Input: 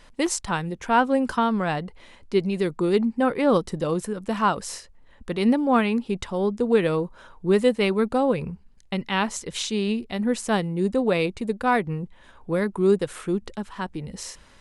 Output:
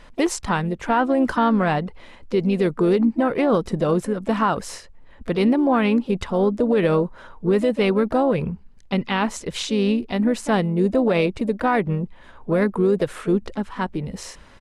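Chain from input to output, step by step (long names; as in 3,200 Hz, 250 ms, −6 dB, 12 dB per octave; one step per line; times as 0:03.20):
high-shelf EQ 4,000 Hz −9.5 dB
pitch-shifted copies added +4 semitones −14 dB
brickwall limiter −16 dBFS, peak gain reduction 8.5 dB
level +5.5 dB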